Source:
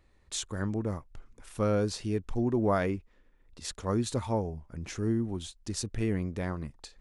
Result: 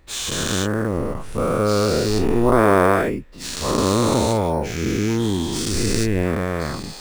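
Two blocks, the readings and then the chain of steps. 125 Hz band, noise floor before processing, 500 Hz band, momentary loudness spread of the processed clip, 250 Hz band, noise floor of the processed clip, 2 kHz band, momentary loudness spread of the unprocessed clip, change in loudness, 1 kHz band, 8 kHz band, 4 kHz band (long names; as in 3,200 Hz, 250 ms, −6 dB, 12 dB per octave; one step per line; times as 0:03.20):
+9.5 dB, −64 dBFS, +13.0 dB, 10 LU, +11.0 dB, −36 dBFS, +16.0 dB, 12 LU, +12.0 dB, +15.5 dB, +13.5 dB, +15.0 dB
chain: every bin's largest magnitude spread in time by 480 ms
in parallel at −6 dB: sample-rate reduction 9,800 Hz, jitter 0%
on the sum: level +1.5 dB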